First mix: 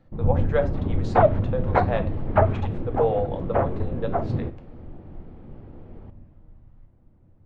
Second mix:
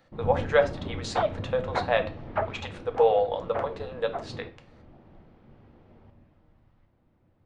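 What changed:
speech +4.5 dB; second sound -7.0 dB; master: add tilt EQ +3 dB/octave

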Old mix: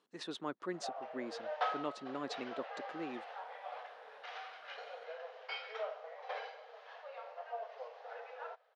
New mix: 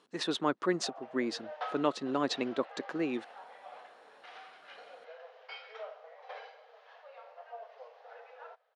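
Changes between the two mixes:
speech +10.5 dB; background -3.5 dB

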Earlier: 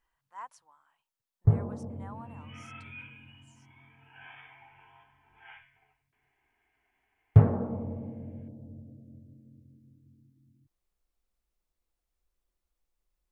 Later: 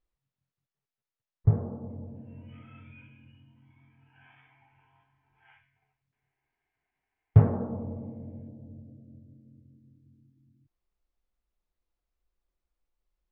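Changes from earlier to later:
speech: muted; second sound -8.5 dB; master: add distance through air 130 m

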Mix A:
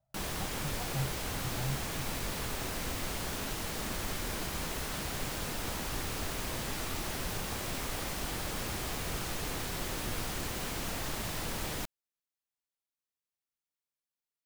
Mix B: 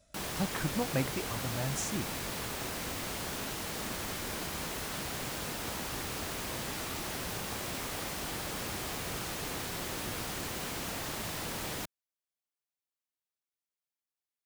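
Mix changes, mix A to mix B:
speech: remove two resonant band-passes 330 Hz, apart 2.6 oct; master: add high-pass 100 Hz 6 dB/octave

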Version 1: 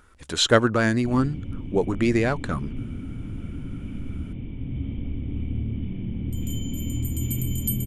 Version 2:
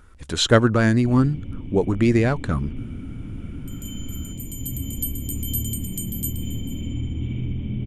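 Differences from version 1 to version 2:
speech: add bass shelf 220 Hz +8.5 dB; second sound: entry -2.65 s

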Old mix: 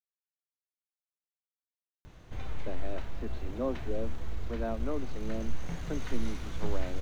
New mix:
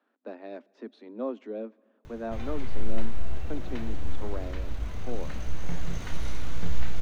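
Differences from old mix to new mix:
speech: entry -2.40 s; reverb: on, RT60 2.3 s

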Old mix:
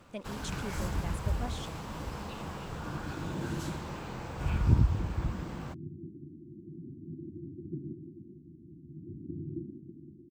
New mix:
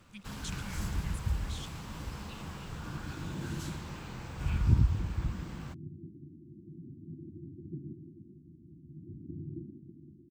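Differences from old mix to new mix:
speech: add brick-wall FIR band-stop 220–1500 Hz; master: add peaking EQ 590 Hz -8 dB 2.1 oct

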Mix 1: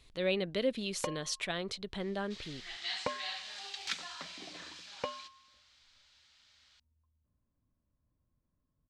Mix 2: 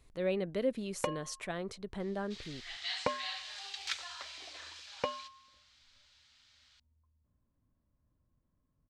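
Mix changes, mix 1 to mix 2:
speech: add peaking EQ 3.6 kHz -12 dB 1.4 oct; first sound +3.0 dB; second sound: add Bessel high-pass 590 Hz, order 4

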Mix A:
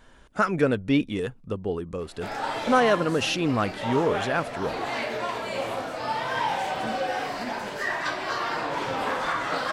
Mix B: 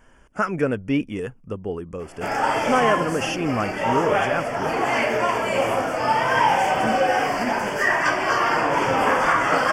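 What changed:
background +8.5 dB; master: add Butterworth band-stop 3.9 kHz, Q 2.3

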